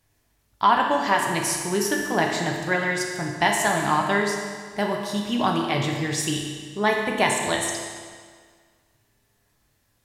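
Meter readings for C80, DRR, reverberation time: 4.0 dB, -0.5 dB, 1.8 s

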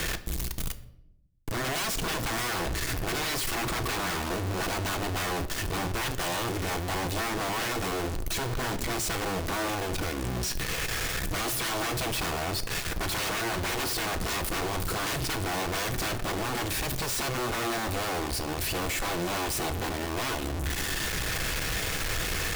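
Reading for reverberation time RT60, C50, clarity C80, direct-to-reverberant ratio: 0.85 s, 14.5 dB, 17.5 dB, 8.0 dB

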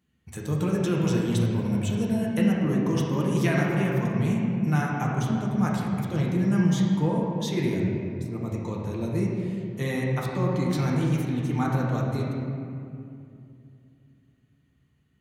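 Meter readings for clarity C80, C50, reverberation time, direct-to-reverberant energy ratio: 1.0 dB, -0.5 dB, 2.5 s, -4.5 dB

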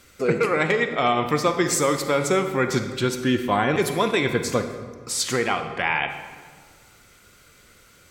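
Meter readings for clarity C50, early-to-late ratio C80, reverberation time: 8.0 dB, 9.5 dB, 1.6 s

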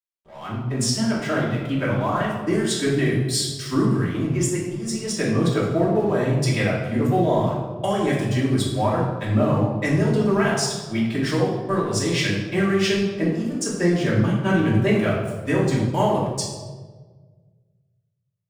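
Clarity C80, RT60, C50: 4.0 dB, 1.5 s, 2.0 dB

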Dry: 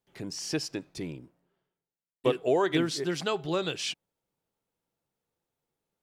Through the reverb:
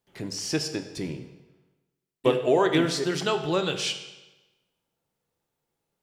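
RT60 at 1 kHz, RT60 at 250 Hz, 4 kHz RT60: 1.1 s, 1.1 s, 0.95 s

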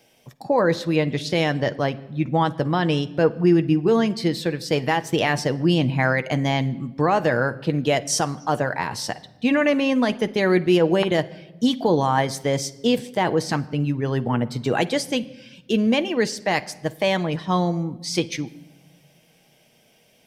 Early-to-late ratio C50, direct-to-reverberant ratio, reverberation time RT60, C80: 18.0 dB, 9.0 dB, 1.0 s, 21.5 dB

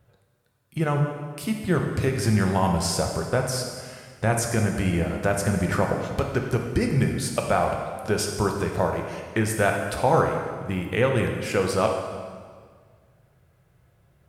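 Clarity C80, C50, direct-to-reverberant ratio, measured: 5.5 dB, 4.0 dB, 2.0 dB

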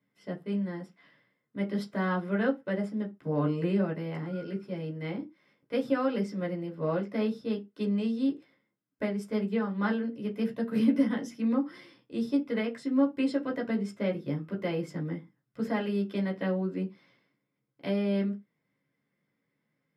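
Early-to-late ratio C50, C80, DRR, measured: 18.0 dB, 27.5 dB, -1.0 dB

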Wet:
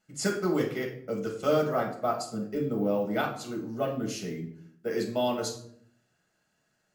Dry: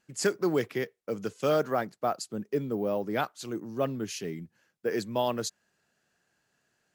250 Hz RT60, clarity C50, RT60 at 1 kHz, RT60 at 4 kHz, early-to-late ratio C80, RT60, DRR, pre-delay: 0.90 s, 7.5 dB, 0.60 s, 0.45 s, 11.5 dB, 0.65 s, -1.0 dB, 5 ms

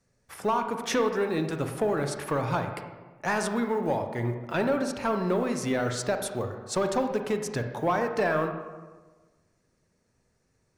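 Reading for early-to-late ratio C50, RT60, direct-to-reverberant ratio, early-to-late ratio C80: 7.0 dB, 1.3 s, 5.5 dB, 9.0 dB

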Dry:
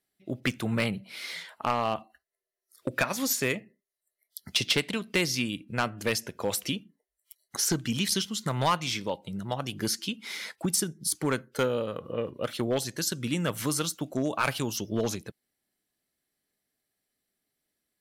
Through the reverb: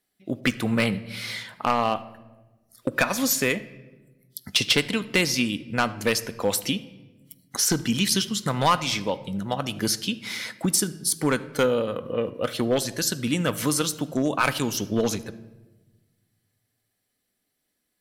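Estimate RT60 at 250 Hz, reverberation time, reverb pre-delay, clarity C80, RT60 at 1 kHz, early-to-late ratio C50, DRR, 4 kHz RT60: 1.8 s, 1.2 s, 4 ms, 18.5 dB, 1.0 s, 16.5 dB, 11.5 dB, 0.80 s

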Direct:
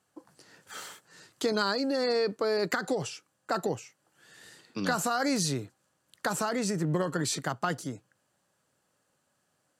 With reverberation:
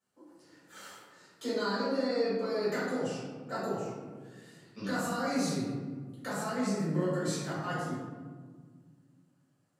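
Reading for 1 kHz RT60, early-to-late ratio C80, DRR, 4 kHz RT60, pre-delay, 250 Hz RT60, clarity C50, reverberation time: 1.4 s, 1.5 dB, -11.5 dB, 0.80 s, 4 ms, 2.7 s, -1.5 dB, 1.7 s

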